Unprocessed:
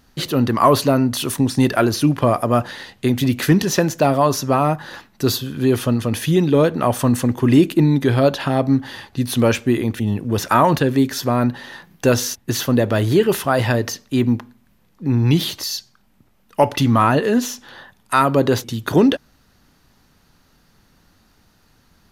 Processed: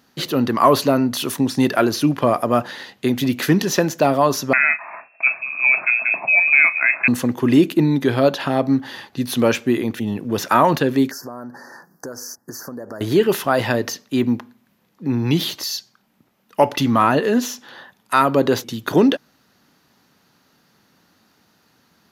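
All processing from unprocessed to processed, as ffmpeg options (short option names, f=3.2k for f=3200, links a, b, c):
-filter_complex "[0:a]asettb=1/sr,asplit=3[a][b][c];[a]atrim=end=4.534[d];[b]atrim=start=4.53:end=7.08,asetpts=PTS-STARTPTS,afade=t=in:d=0.004:c=qsin,afade=t=out:st=2.546:d=0.004:c=qsin,asplit=2[e][f];[f]adelay=36,volume=-12.5dB[g];[e][g]amix=inputs=2:normalize=0,atrim=end_sample=112455,lowpass=f=2.3k:t=q:w=0.5098,lowpass=f=2.3k:t=q:w=0.6013,lowpass=f=2.3k:t=q:w=0.9,lowpass=f=2.3k:t=q:w=2.563,afreqshift=-2700,equalizer=f=650:t=o:w=0.28:g=15[h];[c]atrim=start=7.076[i];[d][h]acrossfade=d=0.004:c1=hsin:c2=qsin[j];[j][i]acrossfade=d=0.004:c1=qsin:c2=hsin,asettb=1/sr,asplit=3[k][l][m];[k]atrim=end=11.114[n];[l]atrim=start=11.11:end=13.01,asetpts=PTS-STARTPTS,afade=t=in:d=0.004:c=qsin,afade=t=out:st=1.896:d=0.004:c=qsin,equalizer=f=74:w=0.4:g=-7,acompressor=threshold=-27dB:ratio=12:attack=3.2:release=140:knee=1:detection=peak,asuperstop=centerf=2900:order=12:qfactor=0.96[o];[m]atrim=start=13.006[p];[n][o]acrossfade=d=0.004:c1=hsin:c2=qsin[q];[q][p]acrossfade=d=0.004:c1=qsin:c2=hsin,highpass=170,equalizer=f=8.8k:t=o:w=0.37:g=-5.5"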